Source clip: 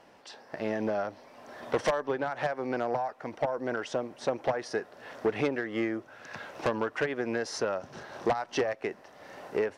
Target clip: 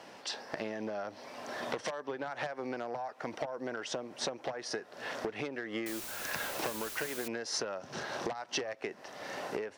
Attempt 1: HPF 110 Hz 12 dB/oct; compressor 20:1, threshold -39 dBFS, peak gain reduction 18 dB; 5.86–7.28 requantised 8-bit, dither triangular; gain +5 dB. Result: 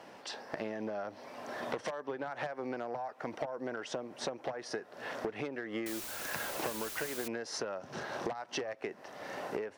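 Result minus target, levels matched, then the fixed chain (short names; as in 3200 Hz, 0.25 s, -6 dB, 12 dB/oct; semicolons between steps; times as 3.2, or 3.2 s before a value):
4000 Hz band -3.0 dB
HPF 110 Hz 12 dB/oct; compressor 20:1, threshold -39 dBFS, peak gain reduction 18 dB; bell 5300 Hz +5.5 dB 2.3 oct; 5.86–7.28 requantised 8-bit, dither triangular; gain +5 dB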